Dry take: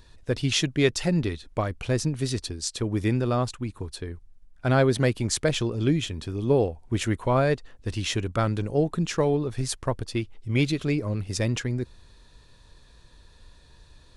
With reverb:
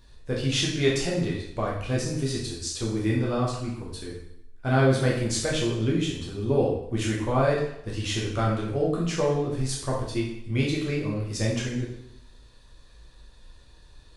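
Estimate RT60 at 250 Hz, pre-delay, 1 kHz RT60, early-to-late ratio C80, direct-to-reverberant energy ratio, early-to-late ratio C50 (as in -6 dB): 0.75 s, 5 ms, 0.80 s, 6.5 dB, -4.5 dB, 3.5 dB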